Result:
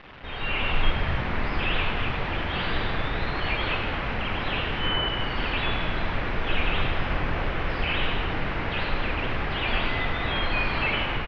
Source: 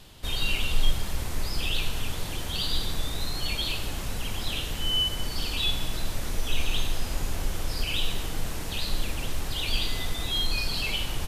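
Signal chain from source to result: delta modulation 32 kbps, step -35 dBFS; LPF 2300 Hz 24 dB/oct; tilt +2 dB/oct; AGC gain up to 9 dB; on a send: frequency-shifting echo 0.101 s, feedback 64%, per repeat -49 Hz, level -9.5 dB

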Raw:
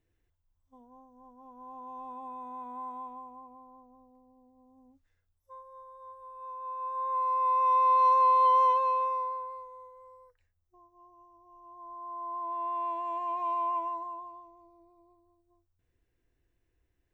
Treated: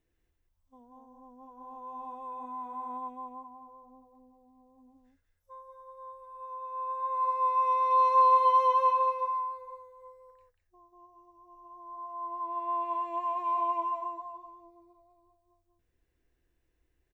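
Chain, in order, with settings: bell 100 Hz -13 dB 0.24 oct; echo 0.189 s -5 dB

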